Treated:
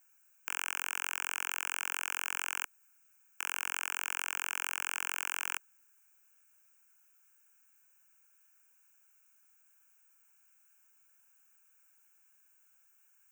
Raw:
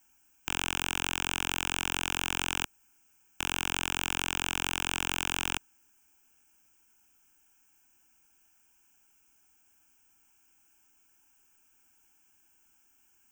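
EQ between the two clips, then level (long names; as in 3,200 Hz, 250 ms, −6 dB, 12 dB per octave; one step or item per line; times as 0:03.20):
Chebyshev high-pass filter 530 Hz, order 3
phaser with its sweep stopped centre 1,600 Hz, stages 4
0.0 dB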